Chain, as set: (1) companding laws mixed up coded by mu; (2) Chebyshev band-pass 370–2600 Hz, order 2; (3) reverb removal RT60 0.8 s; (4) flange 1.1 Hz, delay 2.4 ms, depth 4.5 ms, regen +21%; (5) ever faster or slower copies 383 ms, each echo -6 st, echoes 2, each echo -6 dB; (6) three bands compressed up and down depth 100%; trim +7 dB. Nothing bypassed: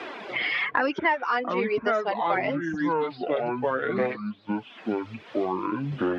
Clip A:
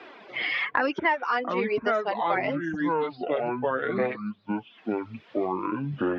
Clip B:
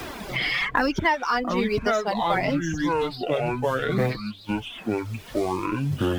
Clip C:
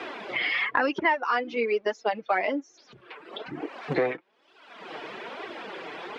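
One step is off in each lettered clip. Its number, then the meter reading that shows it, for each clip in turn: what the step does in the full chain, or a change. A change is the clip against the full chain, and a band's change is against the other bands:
1, distortion -24 dB; 2, 125 Hz band +7.5 dB; 5, momentary loudness spread change +8 LU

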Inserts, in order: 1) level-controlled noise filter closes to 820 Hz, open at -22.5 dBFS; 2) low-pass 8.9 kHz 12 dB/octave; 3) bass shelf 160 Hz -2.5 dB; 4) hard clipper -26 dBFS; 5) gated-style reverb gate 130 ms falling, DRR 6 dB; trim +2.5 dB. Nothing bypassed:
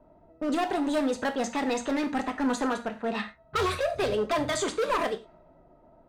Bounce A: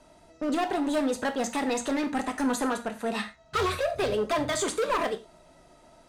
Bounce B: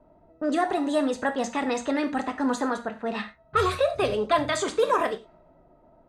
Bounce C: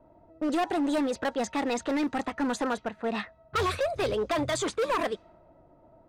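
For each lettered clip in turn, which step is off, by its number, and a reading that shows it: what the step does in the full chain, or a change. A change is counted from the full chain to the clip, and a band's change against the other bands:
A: 1, 8 kHz band +3.0 dB; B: 4, distortion -10 dB; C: 5, 125 Hz band +2.0 dB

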